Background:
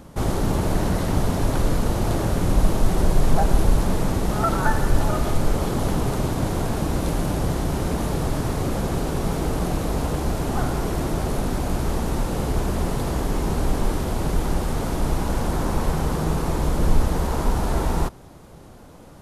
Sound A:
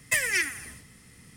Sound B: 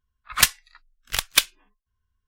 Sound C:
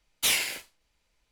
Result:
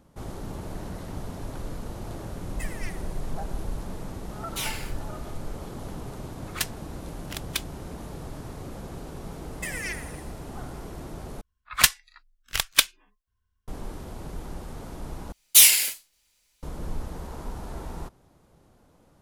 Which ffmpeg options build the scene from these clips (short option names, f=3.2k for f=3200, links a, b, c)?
-filter_complex "[1:a]asplit=2[a][b];[3:a]asplit=2[c][d];[2:a]asplit=2[e][f];[0:a]volume=-14.5dB[g];[b]alimiter=limit=-17.5dB:level=0:latency=1:release=129[h];[d]crystalizer=i=6:c=0[i];[g]asplit=3[j][k][l];[j]atrim=end=11.414[m];[f]atrim=end=2.27,asetpts=PTS-STARTPTS,volume=-1dB[n];[k]atrim=start=13.676:end=15.324[o];[i]atrim=end=1.31,asetpts=PTS-STARTPTS,volume=-4dB[p];[l]atrim=start=16.626[q];[a]atrim=end=1.36,asetpts=PTS-STARTPTS,volume=-16.5dB,afade=t=in:d=0.004:c=hsin,afade=t=out:st=1.356:d=0.004:c=hsin,adelay=2480[r];[c]atrim=end=1.31,asetpts=PTS-STARTPTS,volume=-8dB,afade=t=in:d=0.004:c=hsin,afade=t=out:st=1.306:d=0.004:c=hsin,adelay=190953S[s];[e]atrim=end=2.27,asetpts=PTS-STARTPTS,volume=-12.5dB,afade=t=in:d=0.004:c=hsin,afade=t=out:st=2.266:d=0.004:c=hsin,adelay=272538S[t];[h]atrim=end=1.36,asetpts=PTS-STARTPTS,volume=-5.5dB,afade=t=in:d=0.004:c=hsin,afade=t=out:st=1.356:d=0.004:c=hsin,adelay=9510[u];[m][n]acrossfade=d=0.004:c1=hsin:c2=hsin[v];[v][o]acrossfade=d=0.004:c1=hsin:c2=hsin[w];[w][p]acrossfade=d=0.004:c1=hsin:c2=hsin[x];[x][q]acrossfade=d=0.004:c1=hsin:c2=hsin[y];[y][r][s][t][u]amix=inputs=5:normalize=0"